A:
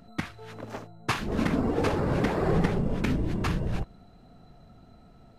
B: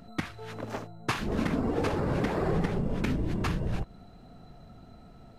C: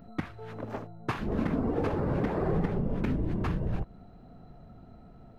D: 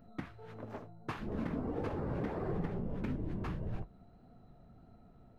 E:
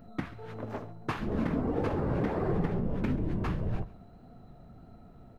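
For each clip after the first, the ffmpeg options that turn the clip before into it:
-af "acompressor=threshold=-31dB:ratio=2,volume=2.5dB"
-af "equalizer=f=8.2k:w=0.3:g=-14"
-af "flanger=delay=8.3:depth=9:regen=-52:speed=1.6:shape=sinusoidal,volume=-4dB"
-af "aecho=1:1:136|272|408:0.112|0.0337|0.0101,volume=7dB"

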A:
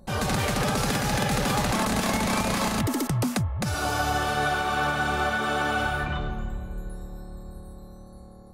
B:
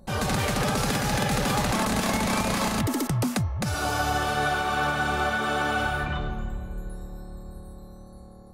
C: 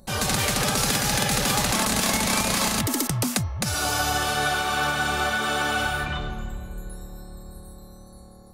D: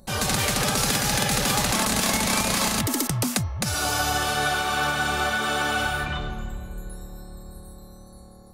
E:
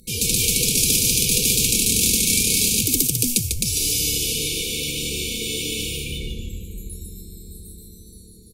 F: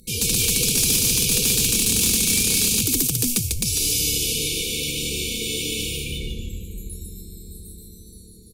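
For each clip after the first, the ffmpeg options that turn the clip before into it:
-af "bandreject=f=354:t=h:w=4,bandreject=f=708:t=h:w=4,bandreject=f=1.062k:t=h:w=4,bandreject=f=1.416k:t=h:w=4,bandreject=f=1.77k:t=h:w=4,bandreject=f=2.124k:t=h:w=4,bandreject=f=2.478k:t=h:w=4,bandreject=f=2.832k:t=h:w=4,bandreject=f=3.186k:t=h:w=4,bandreject=f=3.54k:t=h:w=4,bandreject=f=3.894k:t=h:w=4,bandreject=f=4.248k:t=h:w=4,bandreject=f=4.602k:t=h:w=4,bandreject=f=4.956k:t=h:w=4,bandreject=f=5.31k:t=h:w=4,bandreject=f=5.664k:t=h:w=4,bandreject=f=6.018k:t=h:w=4"
-af "highshelf=f=2.5k:g=10.5,volume=-1dB"
-af anull
-filter_complex "[0:a]aemphasis=mode=production:type=cd,asplit=5[a][b][c][d][e];[b]adelay=147,afreqshift=-120,volume=-5dB[f];[c]adelay=294,afreqshift=-240,volume=-15.2dB[g];[d]adelay=441,afreqshift=-360,volume=-25.3dB[h];[e]adelay=588,afreqshift=-480,volume=-35.5dB[i];[a][f][g][h][i]amix=inputs=5:normalize=0,afftfilt=real='re*(1-between(b*sr/4096,510,2200))':imag='im*(1-between(b*sr/4096,510,2200))':win_size=4096:overlap=0.75"
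-af "asoftclip=type=hard:threshold=-13dB"

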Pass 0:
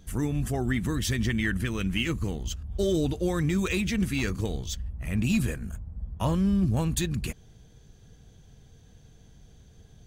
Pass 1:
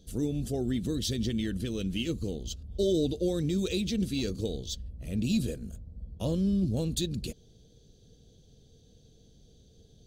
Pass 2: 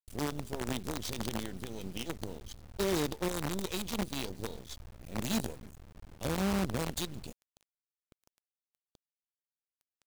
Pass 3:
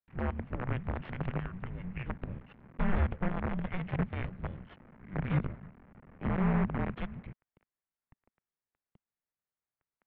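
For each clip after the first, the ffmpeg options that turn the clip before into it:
-af "equalizer=f=250:t=o:w=1:g=4,equalizer=f=500:t=o:w=1:g=10,equalizer=f=1k:t=o:w=1:g=-12,equalizer=f=2k:t=o:w=1:g=-11,equalizer=f=4k:t=o:w=1:g=12,volume=-6.5dB"
-af "acrusher=bits=5:dc=4:mix=0:aa=0.000001,volume=-5.5dB"
-af "highpass=f=160:t=q:w=0.5412,highpass=f=160:t=q:w=1.307,lowpass=f=2.5k:t=q:w=0.5176,lowpass=f=2.5k:t=q:w=0.7071,lowpass=f=2.5k:t=q:w=1.932,afreqshift=-370,volume=4dB"

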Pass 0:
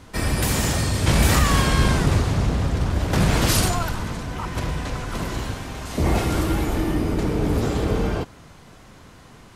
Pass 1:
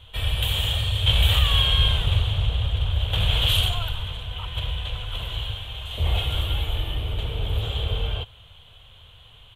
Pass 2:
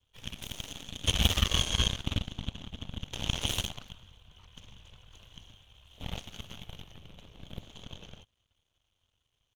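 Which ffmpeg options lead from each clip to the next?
-af "firequalizer=gain_entry='entry(100,0);entry(170,-18);entry(290,-25);entry(470,-9);entry(2000,-10);entry(3200,14);entry(5000,-23);entry(7200,-15);entry(14000,-5)':delay=0.05:min_phase=1"
-af "aeval=exprs='sgn(val(0))*max(abs(val(0))-0.00316,0)':c=same,aeval=exprs='0.473*(cos(1*acos(clip(val(0)/0.473,-1,1)))-cos(1*PI/2))+0.15*(cos(3*acos(clip(val(0)/0.473,-1,1)))-cos(3*PI/2))+0.00841*(cos(7*acos(clip(val(0)/0.473,-1,1)))-cos(7*PI/2))+0.00596*(cos(8*acos(clip(val(0)/0.473,-1,1)))-cos(8*PI/2))':c=same"

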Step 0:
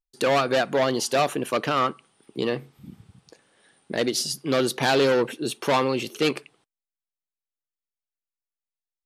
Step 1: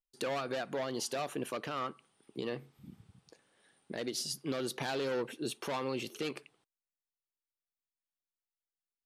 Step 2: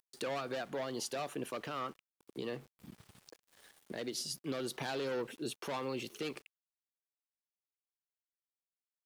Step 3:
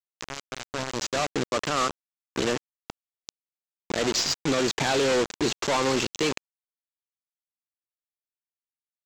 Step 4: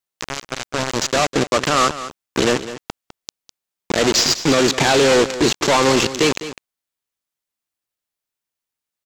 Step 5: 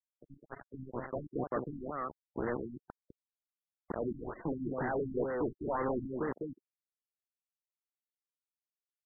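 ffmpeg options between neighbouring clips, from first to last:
-af "alimiter=limit=-17dB:level=0:latency=1:release=165,volume=-8.5dB"
-filter_complex "[0:a]acrossover=split=400[a][b];[b]acompressor=mode=upward:threshold=-45dB:ratio=2.5[c];[a][c]amix=inputs=2:normalize=0,aeval=exprs='val(0)*gte(abs(val(0)),0.002)':c=same,volume=-2.5dB"
-af "dynaudnorm=f=220:g=11:m=11dB,aresample=16000,acrusher=bits=4:mix=0:aa=0.000001,aresample=44100,aeval=exprs='0.211*(cos(1*acos(clip(val(0)/0.211,-1,1)))-cos(1*PI/2))+0.0299*(cos(5*acos(clip(val(0)/0.211,-1,1)))-cos(5*PI/2))':c=same"
-filter_complex "[0:a]asplit=2[a][b];[b]asoftclip=type=tanh:threshold=-23dB,volume=-5.5dB[c];[a][c]amix=inputs=2:normalize=0,aecho=1:1:204:0.211,volume=6.5dB"
-af "aeval=exprs='(mod(5.31*val(0)+1,2)-1)/5.31':c=same,afftfilt=real='re*gte(hypot(re,im),0.02)':imag='im*gte(hypot(re,im),0.02)':win_size=1024:overlap=0.75,afftfilt=real='re*lt(b*sr/1024,320*pow(2100/320,0.5+0.5*sin(2*PI*2.1*pts/sr)))':imag='im*lt(b*sr/1024,320*pow(2100/320,0.5+0.5*sin(2*PI*2.1*pts/sr)))':win_size=1024:overlap=0.75,volume=-8dB"

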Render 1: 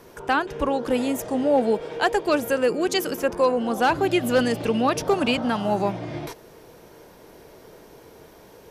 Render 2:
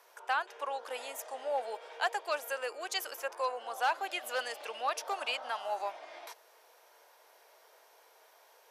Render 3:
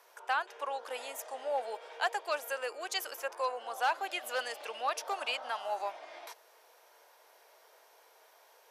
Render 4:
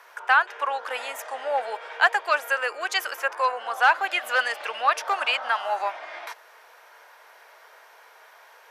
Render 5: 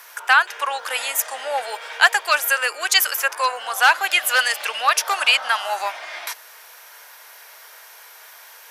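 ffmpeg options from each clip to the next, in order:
-af "highpass=f=640:w=0.5412,highpass=f=640:w=1.3066,volume=-8.5dB"
-af anull
-af "equalizer=f=1.6k:t=o:w=2:g=13,volume=2.5dB"
-af "crystalizer=i=7:c=0,volume=-1dB"

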